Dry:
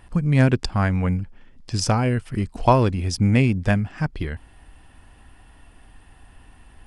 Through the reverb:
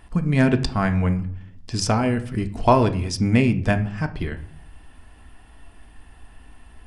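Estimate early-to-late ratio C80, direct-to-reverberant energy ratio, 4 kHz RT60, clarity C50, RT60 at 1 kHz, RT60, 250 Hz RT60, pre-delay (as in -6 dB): 18.5 dB, 7.0 dB, 0.35 s, 14.5 dB, 0.55 s, 0.60 s, 0.75 s, 3 ms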